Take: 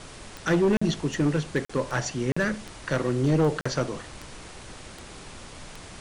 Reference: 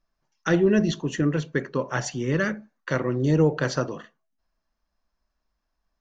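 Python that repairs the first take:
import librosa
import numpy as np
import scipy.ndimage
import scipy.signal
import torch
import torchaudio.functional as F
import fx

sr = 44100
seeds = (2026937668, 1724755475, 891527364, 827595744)

y = fx.fix_declip(x, sr, threshold_db=-17.0)
y = fx.fix_declick_ar(y, sr, threshold=10.0)
y = fx.fix_interpolate(y, sr, at_s=(0.77, 1.65, 2.32, 3.61), length_ms=45.0)
y = fx.noise_reduce(y, sr, print_start_s=4.77, print_end_s=5.27, reduce_db=30.0)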